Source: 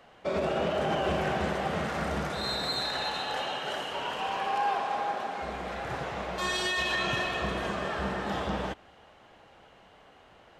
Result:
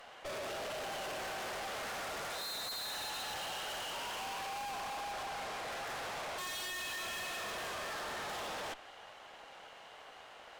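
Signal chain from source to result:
high-pass filter 550 Hz 12 dB per octave
high-shelf EQ 4,000 Hz +5 dB
tube saturation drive 47 dB, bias 0.65
level +7 dB

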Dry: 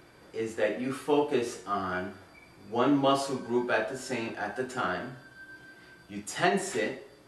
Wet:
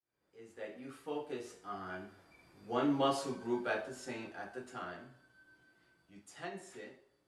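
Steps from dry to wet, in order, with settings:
fade in at the beginning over 0.70 s
source passing by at 0:03.16, 5 m/s, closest 4.2 metres
level −6.5 dB

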